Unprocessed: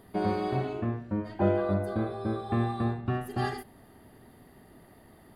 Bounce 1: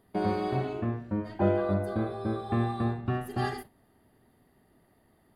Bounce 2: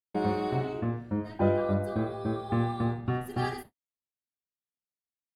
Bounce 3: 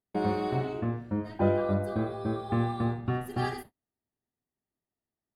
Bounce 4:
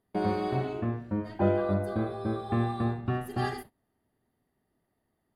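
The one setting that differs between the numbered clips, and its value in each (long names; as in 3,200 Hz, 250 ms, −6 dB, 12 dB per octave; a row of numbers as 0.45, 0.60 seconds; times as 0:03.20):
noise gate, range: −10, −58, −39, −23 decibels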